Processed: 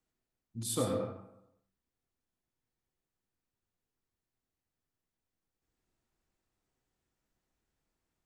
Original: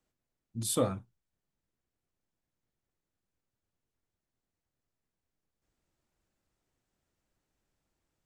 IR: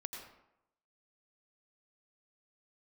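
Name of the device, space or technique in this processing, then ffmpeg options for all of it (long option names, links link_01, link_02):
bathroom: -filter_complex "[0:a]bandreject=frequency=580:width=12[link_01];[1:a]atrim=start_sample=2205[link_02];[link_01][link_02]afir=irnorm=-1:irlink=0"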